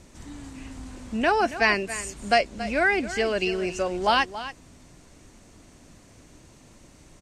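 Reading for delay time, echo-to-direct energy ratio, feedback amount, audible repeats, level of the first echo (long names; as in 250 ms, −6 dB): 278 ms, −13.5 dB, repeats not evenly spaced, 1, −13.5 dB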